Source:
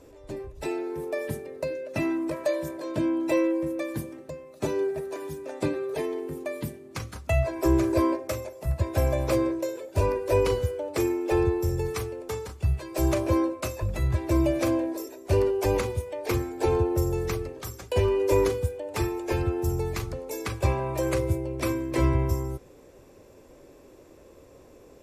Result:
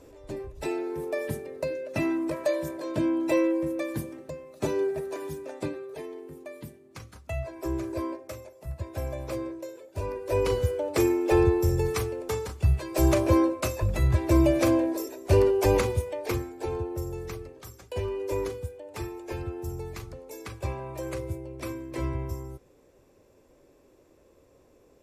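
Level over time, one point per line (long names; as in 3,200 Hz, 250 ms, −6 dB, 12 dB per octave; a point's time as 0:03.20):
0:05.37 0 dB
0:05.87 −9 dB
0:10.02 −9 dB
0:10.72 +2.5 dB
0:16.05 +2.5 dB
0:16.63 −8 dB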